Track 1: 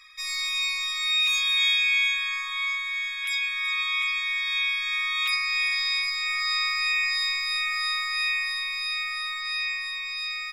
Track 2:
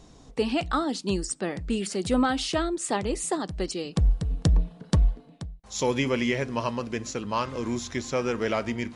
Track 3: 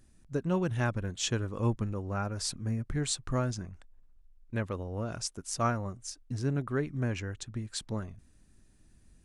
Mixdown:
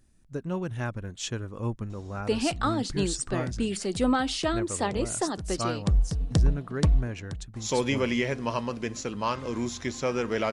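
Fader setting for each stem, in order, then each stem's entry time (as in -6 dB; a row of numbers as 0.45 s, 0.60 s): mute, -1.0 dB, -2.0 dB; mute, 1.90 s, 0.00 s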